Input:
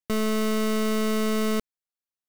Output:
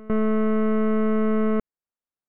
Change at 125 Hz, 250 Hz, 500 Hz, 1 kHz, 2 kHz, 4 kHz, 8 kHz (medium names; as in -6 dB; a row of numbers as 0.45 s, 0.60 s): no reading, +4.0 dB, +3.0 dB, +1.0 dB, -3.0 dB, under -15 dB, under -40 dB